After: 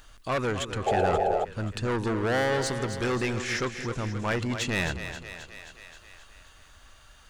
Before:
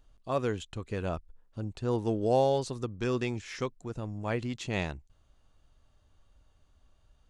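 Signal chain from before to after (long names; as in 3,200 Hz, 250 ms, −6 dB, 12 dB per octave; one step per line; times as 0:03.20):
soft clipping −32 dBFS, distortion −6 dB
parametric band 1,600 Hz +8 dB 1.2 octaves
echo with a time of its own for lows and highs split 360 Hz, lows 176 ms, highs 265 ms, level −9 dB
sound drawn into the spectrogram noise, 0:00.86–0:01.45, 360–870 Hz −32 dBFS
high-shelf EQ 4,800 Hz +5.5 dB
one half of a high-frequency compander encoder only
level +7 dB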